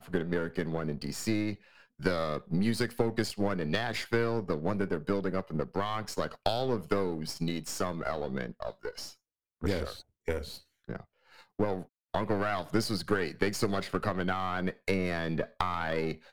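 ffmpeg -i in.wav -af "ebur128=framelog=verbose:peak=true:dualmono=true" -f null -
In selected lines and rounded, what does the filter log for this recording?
Integrated loudness:
  I:         -29.6 LUFS
  Threshold: -39.9 LUFS
Loudness range:
  LRA:         6.2 LU
  Threshold: -50.0 LUFS
  LRA low:   -34.5 LUFS
  LRA high:  -28.3 LUFS
True peak:
  Peak:      -10.9 dBFS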